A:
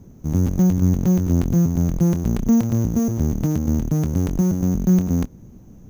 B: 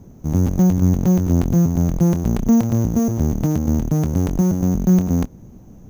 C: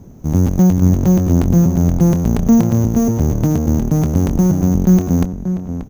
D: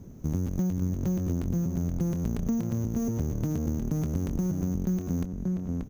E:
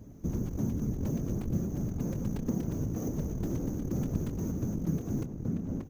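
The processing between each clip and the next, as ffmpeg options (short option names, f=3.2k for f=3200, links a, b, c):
-af "equalizer=f=740:w=1.3:g=4,volume=1.5dB"
-filter_complex "[0:a]asplit=2[a][b];[b]adelay=583.1,volume=-9dB,highshelf=f=4k:g=-13.1[c];[a][c]amix=inputs=2:normalize=0,volume=3.5dB"
-af "equalizer=f=800:w=1.9:g=-5.5,acompressor=threshold=-19dB:ratio=6,volume=-6.5dB"
-af "afftfilt=real='hypot(re,im)*cos(2*PI*random(0))':imag='hypot(re,im)*sin(2*PI*random(1))':win_size=512:overlap=0.75,volume=2.5dB"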